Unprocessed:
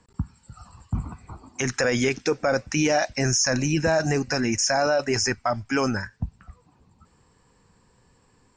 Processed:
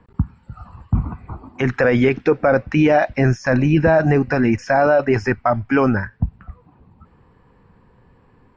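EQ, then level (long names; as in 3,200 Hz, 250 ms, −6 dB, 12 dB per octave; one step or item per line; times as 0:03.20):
high-frequency loss of the air 490 metres
+9.0 dB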